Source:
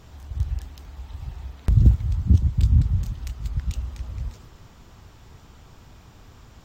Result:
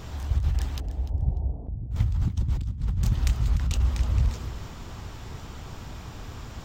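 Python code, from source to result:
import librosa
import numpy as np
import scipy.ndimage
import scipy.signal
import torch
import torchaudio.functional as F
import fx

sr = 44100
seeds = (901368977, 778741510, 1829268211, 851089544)

y = fx.steep_lowpass(x, sr, hz=740.0, slope=36, at=(0.8, 1.91))
y = fx.over_compress(y, sr, threshold_db=-28.0, ratio=-1.0)
y = fx.echo_feedback(y, sr, ms=296, feedback_pct=20, wet_db=-14.5)
y = fx.doppler_dist(y, sr, depth_ms=0.28)
y = y * librosa.db_to_amplitude(3.0)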